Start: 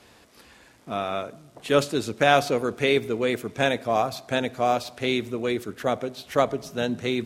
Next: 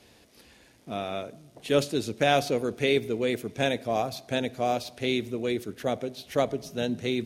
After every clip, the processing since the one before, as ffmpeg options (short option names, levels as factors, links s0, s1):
-af "equalizer=f=1200:t=o:w=1.1:g=-8.5,bandreject=f=7600:w=12,volume=0.841"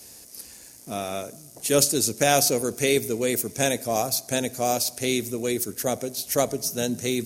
-af "aexciter=amount=6.6:drive=6.6:freq=5000,volume=1.26"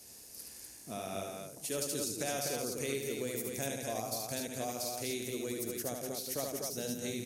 -af "acompressor=threshold=0.0316:ratio=2.5,aecho=1:1:72.89|169.1|247.8:0.631|0.355|0.631,volume=0.376"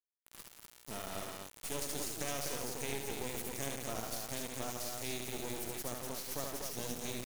-af "acrusher=bits=4:dc=4:mix=0:aa=0.000001"